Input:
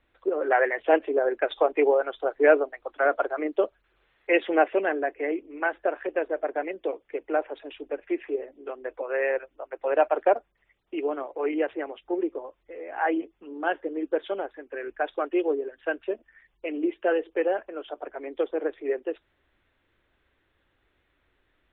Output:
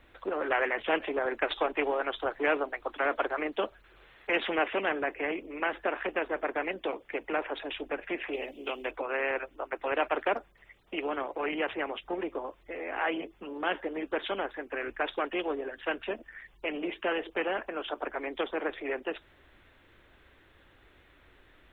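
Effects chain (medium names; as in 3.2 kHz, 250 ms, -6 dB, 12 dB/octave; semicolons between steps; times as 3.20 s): 8.33–8.91 s: resonant high shelf 2.1 kHz +7.5 dB, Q 3; spectrum-flattening compressor 2:1; trim -8 dB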